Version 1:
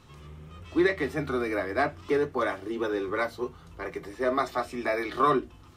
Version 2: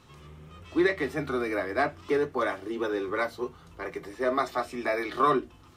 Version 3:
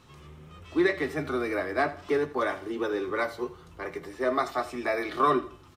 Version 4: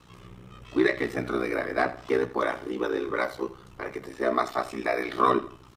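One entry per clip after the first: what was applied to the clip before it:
low shelf 120 Hz -5.5 dB
feedback echo 83 ms, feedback 35%, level -16 dB
ring modulator 31 Hz; gain +4 dB

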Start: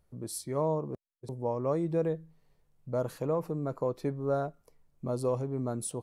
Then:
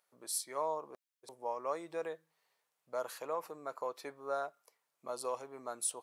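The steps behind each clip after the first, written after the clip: HPF 950 Hz 12 dB/oct; gain +2.5 dB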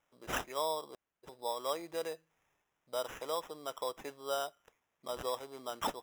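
sample-and-hold 10×; gain +1 dB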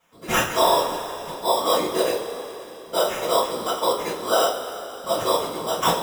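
whisperiser; two-slope reverb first 0.28 s, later 3.5 s, from -18 dB, DRR -8.5 dB; gain +7.5 dB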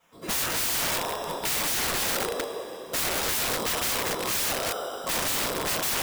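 reverse delay 0.163 s, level -10.5 dB; wrapped overs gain 22 dB

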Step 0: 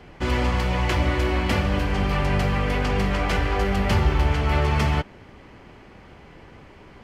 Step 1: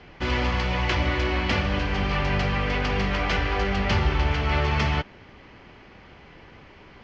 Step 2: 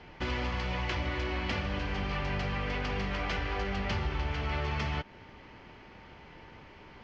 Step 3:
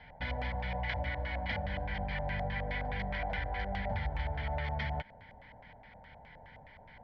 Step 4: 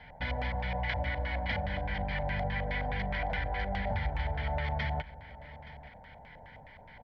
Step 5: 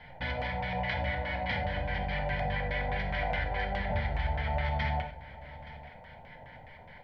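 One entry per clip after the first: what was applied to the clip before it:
steep low-pass 6300 Hz 36 dB/oct; bell 2900 Hz +5 dB 2.5 oct; gain -3 dB
compressor 2.5:1, threshold -28 dBFS, peak gain reduction 7.5 dB; whine 900 Hz -56 dBFS; gain -3.5 dB
fixed phaser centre 1800 Hz, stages 8; LFO low-pass square 4.8 Hz 710–2700 Hz; gain -2 dB
echo 0.873 s -17.5 dB; gain +2.5 dB
reverb, pre-delay 6 ms, DRR 2.5 dB

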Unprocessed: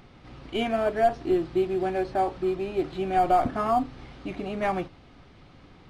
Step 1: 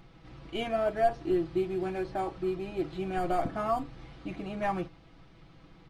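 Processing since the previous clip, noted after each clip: low shelf 130 Hz +4 dB; comb 6.1 ms, depth 56%; gain -6 dB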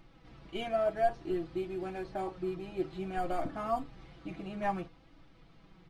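flange 0.58 Hz, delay 3.2 ms, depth 3.1 ms, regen +52%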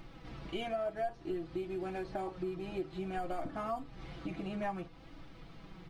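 compressor 3:1, threshold -45 dBFS, peak gain reduction 16.5 dB; gain +7 dB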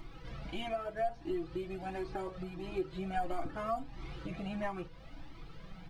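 cascading flanger rising 1.5 Hz; gain +5.5 dB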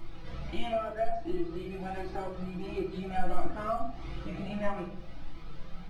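shoebox room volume 95 m³, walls mixed, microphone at 0.78 m

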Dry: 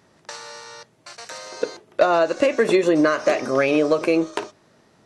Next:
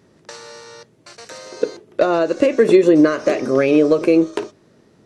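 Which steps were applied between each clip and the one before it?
resonant low shelf 560 Hz +6 dB, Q 1.5; gain -1 dB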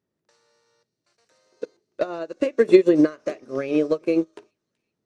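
thin delay 0.378 s, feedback 52%, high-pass 2800 Hz, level -17 dB; upward expander 2.5:1, over -25 dBFS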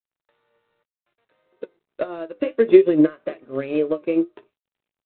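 flange 0.62 Hz, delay 5.1 ms, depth 5.1 ms, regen +65%; gain +3.5 dB; G.726 32 kbps 8000 Hz

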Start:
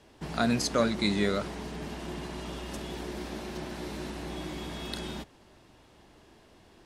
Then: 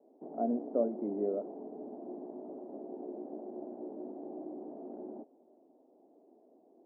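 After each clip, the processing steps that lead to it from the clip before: elliptic band-pass 250–720 Hz, stop band 70 dB; gain -2 dB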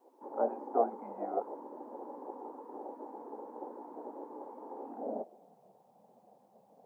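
high-pass sweep 730 Hz -> 110 Hz, 4.79–5.69; spectral gate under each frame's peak -10 dB weak; gain +11 dB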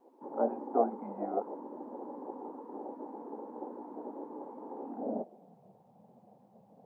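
tone controls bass +13 dB, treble -6 dB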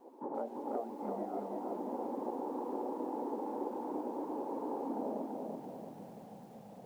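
compressor 16:1, threshold -42 dBFS, peak gain reduction 21.5 dB; lo-fi delay 0.336 s, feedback 55%, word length 12-bit, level -3 dB; gain +6 dB

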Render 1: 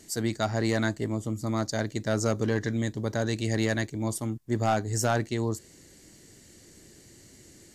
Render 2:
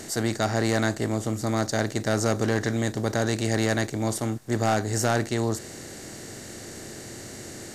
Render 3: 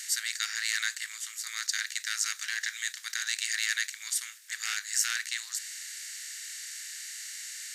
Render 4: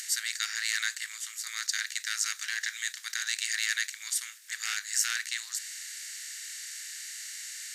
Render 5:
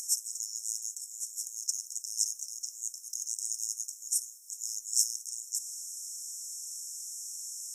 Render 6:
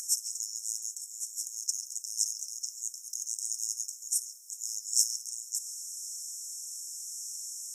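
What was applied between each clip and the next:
per-bin compression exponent 0.6
steep high-pass 1700 Hz 36 dB/oct; gain +3 dB
upward compressor, threshold -41 dBFS
FFT band-reject 560–5200 Hz; gain +1.5 dB
delay with a stepping band-pass 0.138 s, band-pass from 3400 Hz, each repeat -0.7 oct, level -3 dB; LFO high-pass sine 0.86 Hz 680–2800 Hz

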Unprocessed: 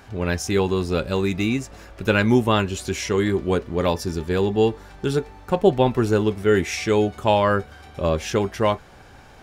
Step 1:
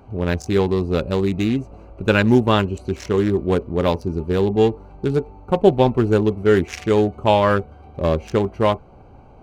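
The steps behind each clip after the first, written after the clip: Wiener smoothing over 25 samples; gain +3 dB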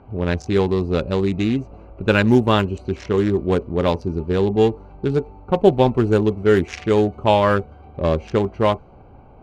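low-pass opened by the level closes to 2800 Hz, open at -10.5 dBFS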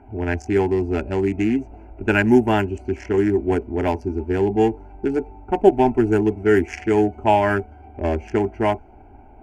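fixed phaser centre 770 Hz, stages 8; gain +2.5 dB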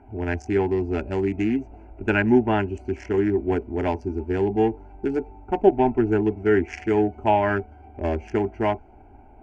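treble ducked by the level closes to 2900 Hz, closed at -12.5 dBFS; gain -3 dB

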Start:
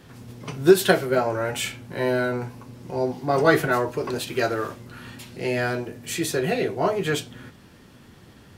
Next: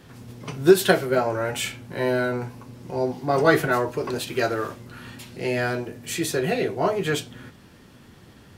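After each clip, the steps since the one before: nothing audible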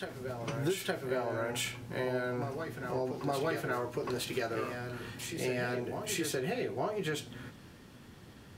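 compressor 6:1, threshold -27 dBFS, peak gain reduction 17.5 dB; reverse echo 0.864 s -6.5 dB; gain -4 dB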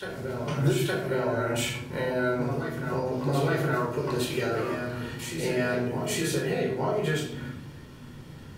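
shoebox room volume 1000 m³, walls furnished, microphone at 4.6 m

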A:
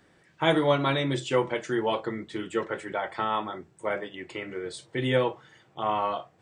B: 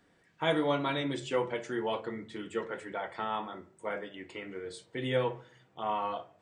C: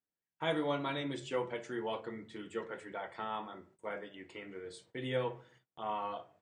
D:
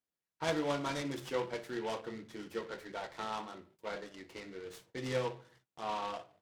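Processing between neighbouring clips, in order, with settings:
reverb RT60 0.50 s, pre-delay 4 ms, DRR 8 dB; gain -6.5 dB
gate -58 dBFS, range -28 dB; gain -5 dB
noise-modulated delay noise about 2000 Hz, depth 0.046 ms

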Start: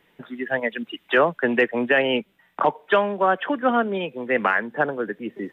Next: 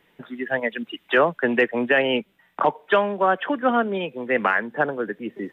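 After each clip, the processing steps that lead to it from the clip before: nothing audible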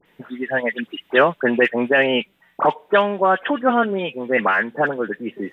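dispersion highs, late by 57 ms, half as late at 1900 Hz; gain +3 dB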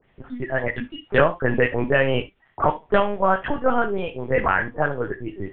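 LPC vocoder at 8 kHz pitch kept; high shelf 2900 Hz -8 dB; non-linear reverb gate 90 ms flat, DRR 10.5 dB; gain -2 dB

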